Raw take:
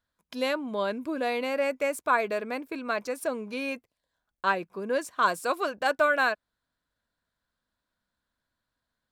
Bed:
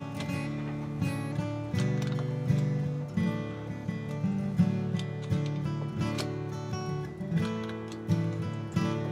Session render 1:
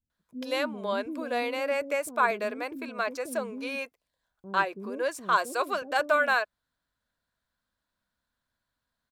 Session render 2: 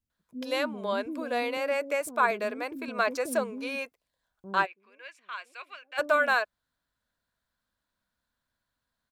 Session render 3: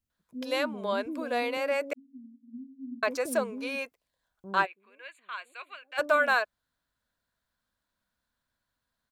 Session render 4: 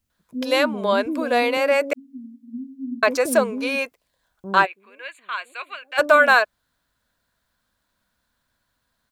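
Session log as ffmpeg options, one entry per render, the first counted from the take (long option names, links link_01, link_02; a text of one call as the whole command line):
ffmpeg -i in.wav -filter_complex "[0:a]acrossover=split=350[link_01][link_02];[link_02]adelay=100[link_03];[link_01][link_03]amix=inputs=2:normalize=0" out.wav
ffmpeg -i in.wav -filter_complex "[0:a]asettb=1/sr,asplit=3[link_01][link_02][link_03];[link_01]atrim=end=1.574[link_04];[link_02]atrim=start=1.57:end=2.01,asetpts=PTS-STARTPTS,afade=type=in:duration=0.004:curve=qsin,afade=type=out:start_time=0.436:duration=0.004:curve=qsin,highpass=220[link_05];[link_03]atrim=start=2.006[link_06];[link_04][link_05]acrossfade=duration=0.004:curve1=hsin:curve2=qsin[link_07];[link_07][link_06]acrossfade=duration=0.004:curve1=qsin:curve2=hsin,asplit=3[link_08][link_09][link_10];[link_08]afade=type=out:start_time=4.65:duration=0.02[link_11];[link_09]bandpass=frequency=2400:width_type=q:width=3.8,afade=type=in:start_time=4.65:duration=0.02,afade=type=out:start_time=5.97:duration=0.02[link_12];[link_10]afade=type=in:start_time=5.97:duration=0.02[link_13];[link_11][link_12][link_13]amix=inputs=3:normalize=0,asplit=3[link_14][link_15][link_16];[link_14]atrim=end=2.882[link_17];[link_15]atrim=start=2.878:end=3.442,asetpts=PTS-STARTPTS,volume=3.5dB[link_18];[link_16]atrim=start=3.438[link_19];[link_17][link_18]acrossfade=duration=0.004:curve1=hsin:curve2=hsin[link_20];[link_20][link_19]acrossfade=duration=0.004:curve1=hsin:curve2=hsin" out.wav
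ffmpeg -i in.wav -filter_complex "[0:a]asettb=1/sr,asplit=3[link_01][link_02][link_03];[link_01]atrim=end=1.934[link_04];[link_02]atrim=start=1.93:end=3.03,asetpts=PTS-STARTPTS,afade=type=in:duration=0.004:curve=qsin,afade=type=out:start_time=1.096:duration=0.004:curve=qsin,asuperpass=centerf=250:order=20:qfactor=5[link_05];[link_03]atrim=start=3.026[link_06];[link_04][link_05]acrossfade=duration=0.004:curve1=hsin:curve2=qsin[link_07];[link_07][link_06]acrossfade=duration=0.004:curve1=qsin:curve2=hsin,asettb=1/sr,asplit=3[link_08][link_09][link_10];[link_08]atrim=end=4.654[link_11];[link_09]atrim=start=4.65:end=5.9,asetpts=PTS-STARTPTS,afade=type=in:duration=0.004:curve=qsin,afade=type=out:start_time=1.246:duration=0.004:curve=qsin,asuperstop=centerf=5500:order=12:qfactor=2.6[link_12];[link_10]atrim=start=5.896[link_13];[link_11][link_12]acrossfade=duration=0.004:curve1=hsin:curve2=qsin[link_14];[link_14][link_13]acrossfade=duration=0.004:curve1=qsin:curve2=hsin" out.wav
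ffmpeg -i in.wav -af "volume=10dB,alimiter=limit=-3dB:level=0:latency=1" out.wav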